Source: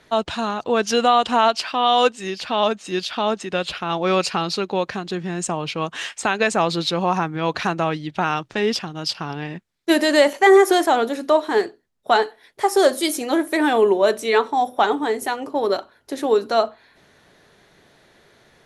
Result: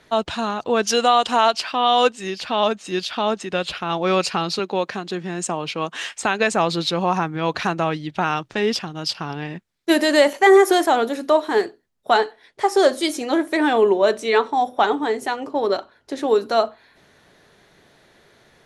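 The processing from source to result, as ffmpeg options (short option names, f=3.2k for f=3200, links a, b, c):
-filter_complex "[0:a]asettb=1/sr,asplit=3[a][b][c];[a]atrim=end=0.874[d];[b]atrim=start=0.87:end=1.54,asetpts=PTS-STARTPTS,afade=t=in:d=0.004:c=qsin,afade=t=out:st=0.666:d=0.004:c=qsin,bass=f=250:g=-6,treble=f=4k:g=5[e];[c]atrim=start=1.536[f];[d][e]acrossfade=d=0.004:c1=hsin:c2=qsin[g];[g][f]acrossfade=d=0.004:c1=qsin:c2=hsin,asettb=1/sr,asplit=3[h][i][j];[h]atrim=end=4.594[k];[i]atrim=start=4.59:end=6.06,asetpts=PTS-STARTPTS,afade=t=in:d=0.004:c=qsin,afade=t=out:st=1.466:d=0.004:c=qsin,highpass=170[l];[j]atrim=start=6.056[m];[k][l]acrossfade=d=0.004:c1=hsin:c2=qsin[n];[n][m]acrossfade=d=0.004:c1=qsin:c2=hsin,asettb=1/sr,asplit=3[o][p][q];[o]atrim=end=12.214[r];[p]atrim=start=12.21:end=16.28,asetpts=PTS-STARTPTS,afade=t=in:d=0.004:c=qsin,afade=t=out:st=4.066:d=0.004:c=qsin,lowpass=7.6k[s];[q]atrim=start=16.276[t];[r][s]acrossfade=d=0.004:c1=hsin:c2=qsin[u];[u][t]acrossfade=d=0.004:c1=qsin:c2=hsin"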